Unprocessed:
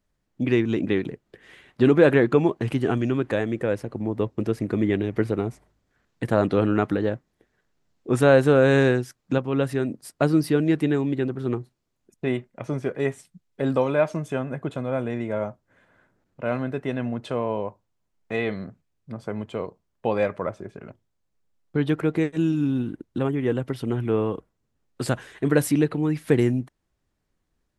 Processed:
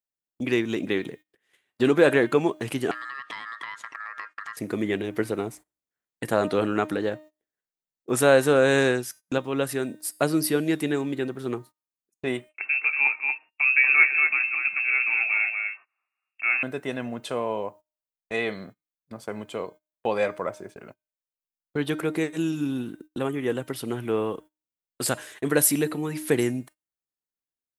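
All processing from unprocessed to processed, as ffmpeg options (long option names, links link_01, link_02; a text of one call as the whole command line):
ffmpeg -i in.wav -filter_complex "[0:a]asettb=1/sr,asplit=3[link_01][link_02][link_03];[link_01]atrim=end=2.914[link_04];[link_02]atrim=start=2.91:end=4.57,asetpts=PTS-STARTPTS,afade=type=in:duration=0.004:curve=qsin,afade=type=out:start_time=1.656:duration=0.004:curve=qsin,lowpass=frequency=6800:width=0.5412,lowpass=frequency=6800:width=1.3066,aeval=exprs='val(0)*sin(2*PI*1500*n/s)':channel_layout=same,acompressor=threshold=-32dB:ratio=10:attack=3.2:release=140:knee=1:detection=peak[link_05];[link_03]atrim=start=4.566[link_06];[link_04][link_05]acrossfade=duration=0.004:curve1=hsin:curve2=qsin[link_07];[link_07][link_06]acrossfade=duration=0.004:curve1=qsin:curve2=hsin,asettb=1/sr,asplit=3[link_08][link_09][link_10];[link_08]atrim=end=12.494[link_11];[link_09]atrim=start=12.49:end=16.63,asetpts=PTS-STARTPTS,afade=type=in:duration=0.004:curve=qsin,afade=type=out:start_time=4.136:duration=0.004:curve=qsin,aecho=1:1:234:0.596,atrim=end_sample=182574,lowpass=frequency=2400:width_type=q:width=0.5098,lowpass=frequency=2400:width_type=q:width=0.6013,lowpass=frequency=2400:width_type=q:width=0.9,lowpass=frequency=2400:width_type=q:width=2.563,afreqshift=-2800[link_12];[link_10]atrim=start=16.626[link_13];[link_11][link_12]acrossfade=duration=0.004:curve1=hsin:curve2=qsin[link_14];[link_14][link_13]acrossfade=duration=0.004:curve1=qsin:curve2=hsin,aemphasis=mode=production:type=bsi,bandreject=frequency=307.5:width_type=h:width=4,bandreject=frequency=615:width_type=h:width=4,bandreject=frequency=922.5:width_type=h:width=4,bandreject=frequency=1230:width_type=h:width=4,bandreject=frequency=1537.5:width_type=h:width=4,bandreject=frequency=1845:width_type=h:width=4,bandreject=frequency=2152.5:width_type=h:width=4,bandreject=frequency=2460:width_type=h:width=4,bandreject=frequency=2767.5:width_type=h:width=4,bandreject=frequency=3075:width_type=h:width=4,bandreject=frequency=3382.5:width_type=h:width=4,bandreject=frequency=3690:width_type=h:width=4,bandreject=frequency=3997.5:width_type=h:width=4,bandreject=frequency=4305:width_type=h:width=4,bandreject=frequency=4612.5:width_type=h:width=4,bandreject=frequency=4920:width_type=h:width=4,bandreject=frequency=5227.5:width_type=h:width=4,bandreject=frequency=5535:width_type=h:width=4,bandreject=frequency=5842.5:width_type=h:width=4,bandreject=frequency=6150:width_type=h:width=4,bandreject=frequency=6457.5:width_type=h:width=4,bandreject=frequency=6765:width_type=h:width=4,bandreject=frequency=7072.5:width_type=h:width=4,bandreject=frequency=7380:width_type=h:width=4,bandreject=frequency=7687.5:width_type=h:width=4,bandreject=frequency=7995:width_type=h:width=4,bandreject=frequency=8302.5:width_type=h:width=4,bandreject=frequency=8610:width_type=h:width=4,bandreject=frequency=8917.5:width_type=h:width=4,bandreject=frequency=9225:width_type=h:width=4,bandreject=frequency=9532.5:width_type=h:width=4,bandreject=frequency=9840:width_type=h:width=4,bandreject=frequency=10147.5:width_type=h:width=4,bandreject=frequency=10455:width_type=h:width=4,bandreject=frequency=10762.5:width_type=h:width=4,bandreject=frequency=11070:width_type=h:width=4,bandreject=frequency=11377.5:width_type=h:width=4,bandreject=frequency=11685:width_type=h:width=4,agate=range=-23dB:threshold=-44dB:ratio=16:detection=peak" out.wav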